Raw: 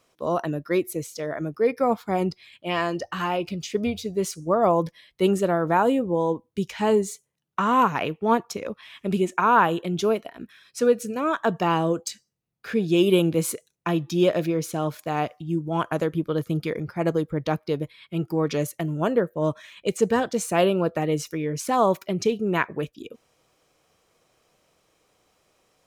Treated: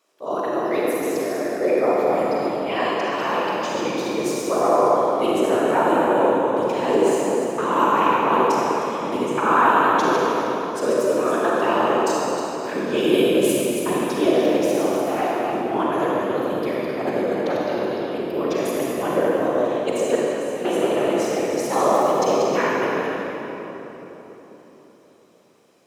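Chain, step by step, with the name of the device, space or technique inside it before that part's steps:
feedback delay that plays each chunk backwards 155 ms, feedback 40%, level −5 dB
0:20.15–0:20.65: guitar amp tone stack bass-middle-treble 6-0-2
whispering ghost (random phases in short frames; high-pass filter 310 Hz 12 dB per octave; convolution reverb RT60 4.0 s, pre-delay 36 ms, DRR −5 dB)
level −2.5 dB

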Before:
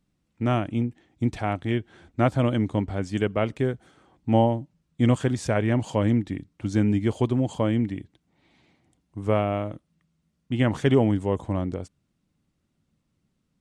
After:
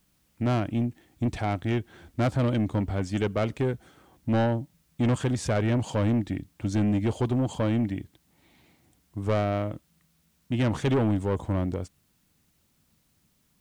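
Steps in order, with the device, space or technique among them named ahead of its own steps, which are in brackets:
open-reel tape (soft clipping −20.5 dBFS, distortion −10 dB; parametric band 64 Hz +4 dB 1 octave; white noise bed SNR 43 dB)
level +1 dB

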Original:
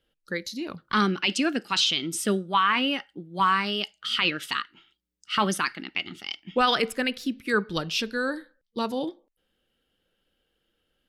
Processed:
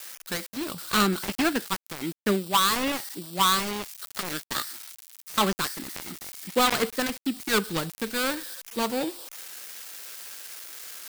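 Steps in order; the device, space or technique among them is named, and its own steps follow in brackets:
notch filter 3,000 Hz, Q 6.9
0:04.53–0:05.33: Butterworth high-pass 200 Hz 96 dB per octave
tilt shelving filter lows −3 dB
budget class-D amplifier (gap after every zero crossing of 0.23 ms; spike at every zero crossing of −25 dBFS)
level +3 dB

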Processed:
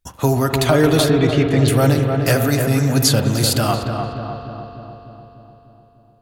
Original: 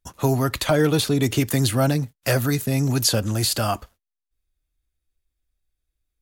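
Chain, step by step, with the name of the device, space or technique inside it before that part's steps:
0:01.10–0:01.68: low-pass filter 3,200 Hz 12 dB per octave
dub delay into a spring reverb (feedback echo with a low-pass in the loop 299 ms, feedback 63%, low-pass 1,500 Hz, level −4.5 dB; spring reverb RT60 3.4 s, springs 43 ms, chirp 55 ms, DRR 7 dB)
level +3.5 dB

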